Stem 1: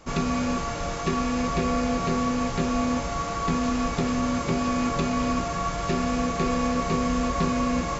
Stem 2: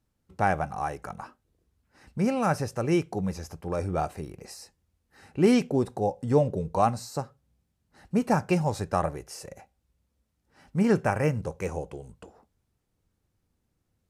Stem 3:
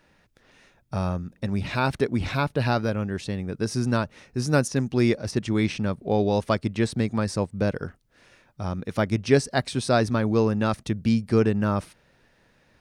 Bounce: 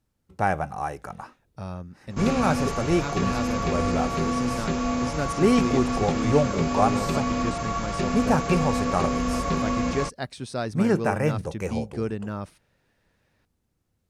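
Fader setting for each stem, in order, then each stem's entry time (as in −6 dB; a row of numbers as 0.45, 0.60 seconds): −1.0, +1.0, −8.5 decibels; 2.10, 0.00, 0.65 seconds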